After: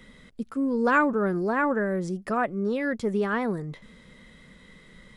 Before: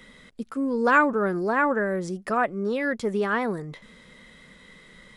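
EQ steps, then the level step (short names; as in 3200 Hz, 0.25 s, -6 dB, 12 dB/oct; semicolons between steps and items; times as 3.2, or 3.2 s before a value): low shelf 290 Hz +7.5 dB; -3.5 dB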